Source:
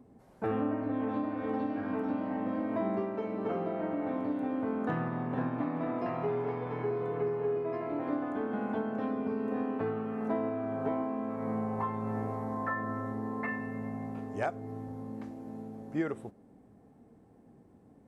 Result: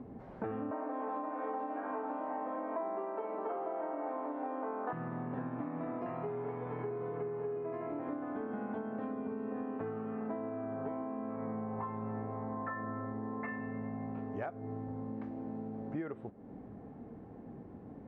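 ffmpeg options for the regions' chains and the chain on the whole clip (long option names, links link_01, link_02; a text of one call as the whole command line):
ffmpeg -i in.wav -filter_complex "[0:a]asettb=1/sr,asplit=3[link_01][link_02][link_03];[link_01]atrim=end=0.714[link_04];[link_02]atrim=start=0.71:end=4.93,asetpts=PTS-STARTPTS,afade=type=in:duration=0.004:curve=qsin,afade=type=out:start_time=4.216:duration=0.004:curve=qsin,highpass=frequency=300:width=0.5412,highpass=frequency=300:width=1.3066,equalizer=frequency=900:width=1:gain=10.5[link_05];[link_03]atrim=start=4.926[link_06];[link_04][link_05]acrossfade=duration=0.004:curve1=hsin:curve2=qsin[link_07];[link_07][link_06]acrossfade=duration=0.004:curve1=qsin:curve2=hsin,lowpass=2200,acompressor=threshold=-49dB:ratio=4,volume=9.5dB" out.wav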